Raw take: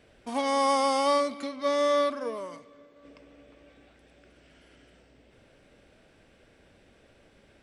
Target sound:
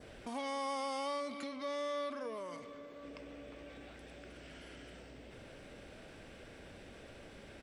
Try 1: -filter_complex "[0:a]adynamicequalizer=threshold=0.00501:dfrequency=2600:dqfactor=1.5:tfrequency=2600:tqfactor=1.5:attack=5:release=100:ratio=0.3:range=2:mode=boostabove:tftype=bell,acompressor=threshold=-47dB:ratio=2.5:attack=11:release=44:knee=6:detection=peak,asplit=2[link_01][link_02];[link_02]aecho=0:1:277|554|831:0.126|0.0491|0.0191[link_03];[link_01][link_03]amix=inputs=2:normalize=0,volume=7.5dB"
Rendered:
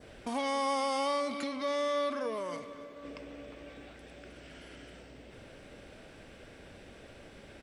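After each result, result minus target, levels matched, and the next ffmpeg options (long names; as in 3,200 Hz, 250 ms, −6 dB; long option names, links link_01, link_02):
downward compressor: peak gain reduction −7 dB; echo-to-direct +10 dB
-filter_complex "[0:a]adynamicequalizer=threshold=0.00501:dfrequency=2600:dqfactor=1.5:tfrequency=2600:tqfactor=1.5:attack=5:release=100:ratio=0.3:range=2:mode=boostabove:tftype=bell,acompressor=threshold=-58.5dB:ratio=2.5:attack=11:release=44:knee=6:detection=peak,asplit=2[link_01][link_02];[link_02]aecho=0:1:277|554|831:0.126|0.0491|0.0191[link_03];[link_01][link_03]amix=inputs=2:normalize=0,volume=7.5dB"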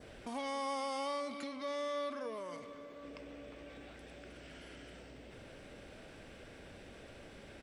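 echo-to-direct +10 dB
-filter_complex "[0:a]adynamicequalizer=threshold=0.00501:dfrequency=2600:dqfactor=1.5:tfrequency=2600:tqfactor=1.5:attack=5:release=100:ratio=0.3:range=2:mode=boostabove:tftype=bell,acompressor=threshold=-58.5dB:ratio=2.5:attack=11:release=44:knee=6:detection=peak,asplit=2[link_01][link_02];[link_02]aecho=0:1:277|554:0.0398|0.0155[link_03];[link_01][link_03]amix=inputs=2:normalize=0,volume=7.5dB"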